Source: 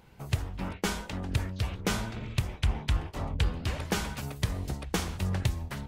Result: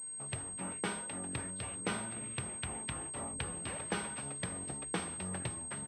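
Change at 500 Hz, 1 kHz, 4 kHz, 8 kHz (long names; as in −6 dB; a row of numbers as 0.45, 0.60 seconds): −5.5, −5.0, −8.5, +6.0 decibels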